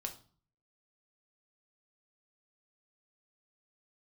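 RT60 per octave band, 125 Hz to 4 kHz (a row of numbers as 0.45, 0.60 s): 0.70, 0.60, 0.45, 0.45, 0.35, 0.35 s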